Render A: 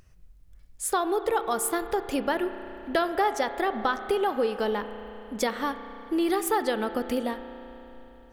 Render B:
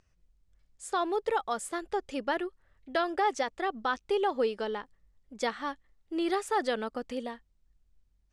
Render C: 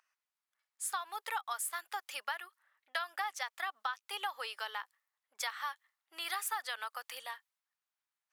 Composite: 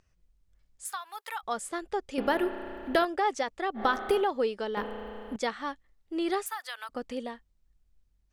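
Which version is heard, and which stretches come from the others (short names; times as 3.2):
B
0.85–1.43 from C
2.18–3.05 from A
3.79–4.23 from A, crossfade 0.10 s
4.77–5.36 from A
6.46–6.89 from C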